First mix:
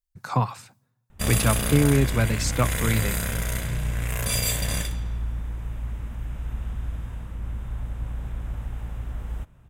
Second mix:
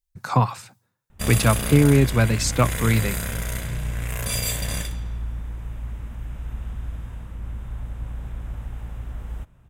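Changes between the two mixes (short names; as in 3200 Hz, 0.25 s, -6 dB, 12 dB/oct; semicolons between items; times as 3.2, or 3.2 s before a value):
speech +6.5 dB; reverb: off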